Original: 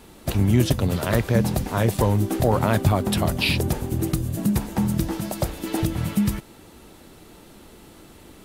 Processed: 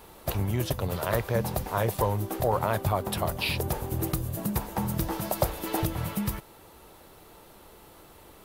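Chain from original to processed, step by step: high shelf 8900 Hz +10.5 dB; vocal rider 0.5 s; graphic EQ 250/500/1000/8000 Hz -7/+4/+6/-5 dB; gain -6.5 dB

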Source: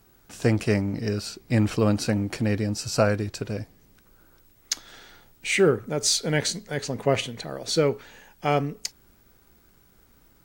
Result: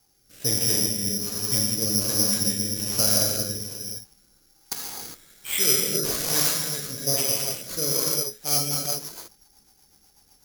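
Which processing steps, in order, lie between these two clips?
non-linear reverb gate 0.43 s flat, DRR -4.5 dB; careless resampling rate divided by 8×, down none, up zero stuff; rotary speaker horn 1.2 Hz, later 8 Hz, at 8.15; gain -11.5 dB

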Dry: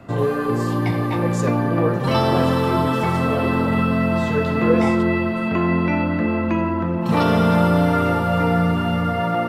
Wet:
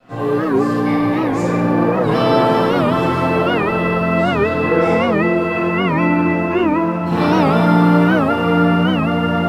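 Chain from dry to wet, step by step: high shelf 4600 Hz -6 dB; crossover distortion -48 dBFS; low shelf 270 Hz -9 dB; reverb RT60 2.9 s, pre-delay 4 ms, DRR -16 dB; record warp 78 rpm, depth 160 cents; gain -9.5 dB

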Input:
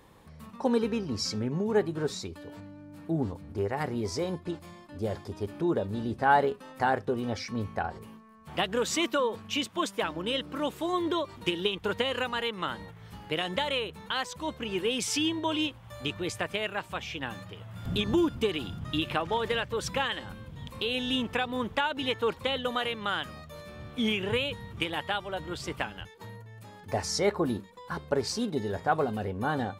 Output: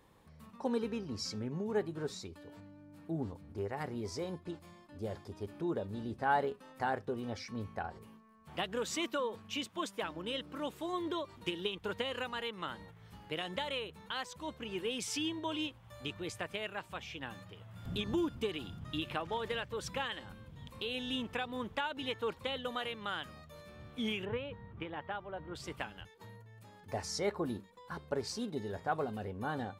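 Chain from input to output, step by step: 24.25–25.55 LPF 1700 Hz 12 dB/oct; gain -8 dB

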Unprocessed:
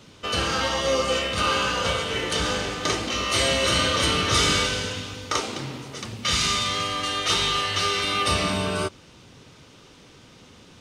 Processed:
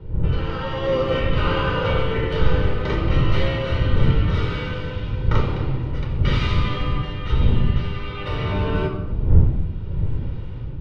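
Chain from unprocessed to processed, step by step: octaver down 1 oct, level 0 dB; wind noise 120 Hz -22 dBFS; high shelf 12000 Hz -11 dB; AGC gain up to 12.5 dB; air absorption 400 m; reverb RT60 0.95 s, pre-delay 26 ms, DRR 5.5 dB; gain -8 dB

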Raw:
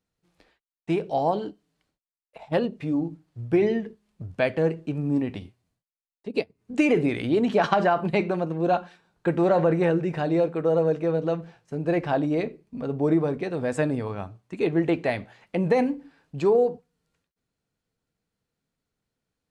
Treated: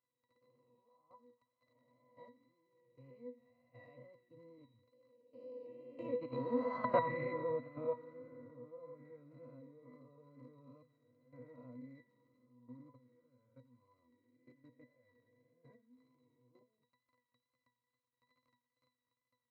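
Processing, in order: spectral swells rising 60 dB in 1.73 s; Doppler pass-by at 6.97, 40 m/s, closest 6.6 m; crackle 90/s -46 dBFS; level quantiser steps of 17 dB; bell 1200 Hz +5.5 dB 0.74 oct; octave resonator B, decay 0.19 s; on a send: thin delay 87 ms, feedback 79%, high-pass 1500 Hz, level -15.5 dB; on the sum: wow and flutter 25 cents; low shelf 78 Hz -7.5 dB; gain +9 dB

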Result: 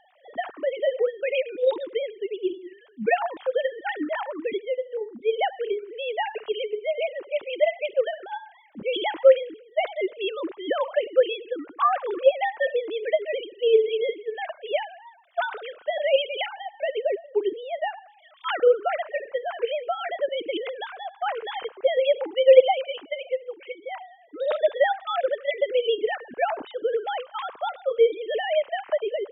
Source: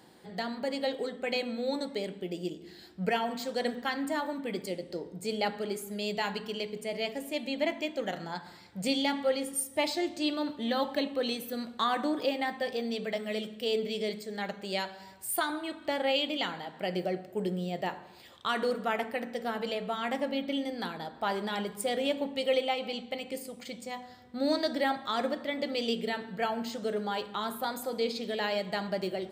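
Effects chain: sine-wave speech; gain +7.5 dB

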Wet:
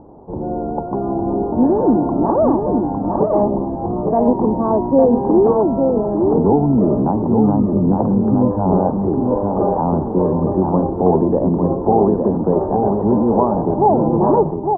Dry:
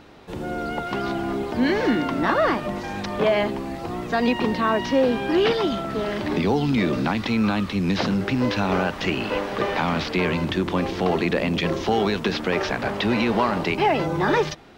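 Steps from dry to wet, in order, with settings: elliptic low-pass 930 Hz, stop band 60 dB; 3.23–4.27 negative-ratio compressor -22 dBFS, ratio -0.5; on a send: echo 0.856 s -4.5 dB; on the sum: gain +7 dB

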